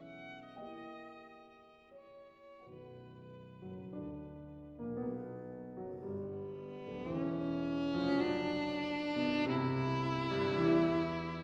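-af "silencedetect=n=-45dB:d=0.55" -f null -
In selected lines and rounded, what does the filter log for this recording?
silence_start: 1.25
silence_end: 2.73 | silence_duration: 1.48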